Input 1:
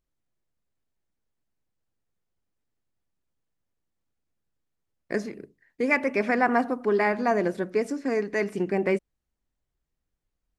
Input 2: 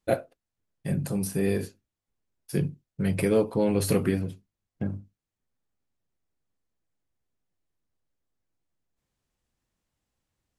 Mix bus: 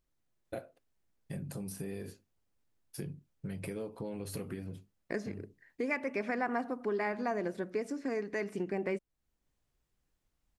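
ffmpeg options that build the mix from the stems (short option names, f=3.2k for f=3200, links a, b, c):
-filter_complex "[0:a]volume=1dB[a];[1:a]acompressor=threshold=-29dB:ratio=2.5,adelay=450,volume=-5dB[b];[a][b]amix=inputs=2:normalize=0,acompressor=threshold=-40dB:ratio=2"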